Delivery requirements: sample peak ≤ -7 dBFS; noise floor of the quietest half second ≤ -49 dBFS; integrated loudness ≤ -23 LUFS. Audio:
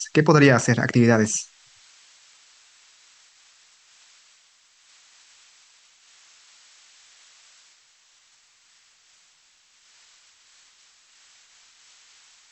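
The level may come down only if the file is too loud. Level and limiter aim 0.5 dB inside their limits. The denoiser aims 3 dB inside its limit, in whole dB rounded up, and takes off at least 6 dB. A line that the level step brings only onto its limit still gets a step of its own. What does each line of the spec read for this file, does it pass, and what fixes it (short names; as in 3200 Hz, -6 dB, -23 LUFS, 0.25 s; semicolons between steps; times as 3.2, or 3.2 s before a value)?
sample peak -3.0 dBFS: fail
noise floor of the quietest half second -60 dBFS: OK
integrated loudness -18.0 LUFS: fail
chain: gain -5.5 dB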